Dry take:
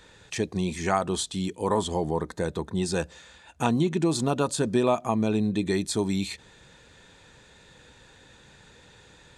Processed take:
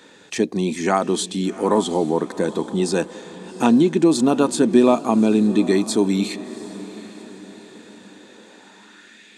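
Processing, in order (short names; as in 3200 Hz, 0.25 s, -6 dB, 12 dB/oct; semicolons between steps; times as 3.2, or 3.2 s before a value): high-pass sweep 250 Hz -> 2200 Hz, 8.12–9.23; diffused feedback echo 0.749 s, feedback 45%, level -16 dB; gain +4.5 dB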